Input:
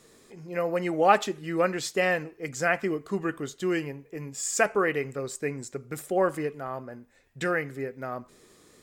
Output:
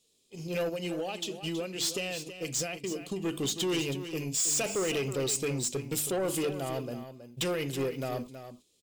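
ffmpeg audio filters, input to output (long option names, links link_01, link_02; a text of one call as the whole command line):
ffmpeg -i in.wav -filter_complex "[0:a]bandreject=frequency=50:width_type=h:width=6,bandreject=frequency=100:width_type=h:width=6,bandreject=frequency=150:width_type=h:width=6,bandreject=frequency=200:width_type=h:width=6,bandreject=frequency=250:width_type=h:width=6,bandreject=frequency=300:width_type=h:width=6,bandreject=frequency=350:width_type=h:width=6,asplit=3[link_01][link_02][link_03];[link_01]afade=type=out:start_time=0.68:duration=0.02[link_04];[link_02]acompressor=threshold=-35dB:ratio=12,afade=type=in:start_time=0.68:duration=0.02,afade=type=out:start_time=3.24:duration=0.02[link_05];[link_03]afade=type=in:start_time=3.24:duration=0.02[link_06];[link_04][link_05][link_06]amix=inputs=3:normalize=0,equalizer=frequency=1300:width_type=o:width=1.6:gain=-8.5,alimiter=level_in=1dB:limit=-24dB:level=0:latency=1:release=41,volume=-1dB,highshelf=frequency=2300:width_type=q:width=3:gain=8,asoftclip=type=tanh:threshold=-32.5dB,agate=range=-25dB:threshold=-47dB:ratio=16:detection=peak,aecho=1:1:322:0.282,volume=6.5dB" out.wav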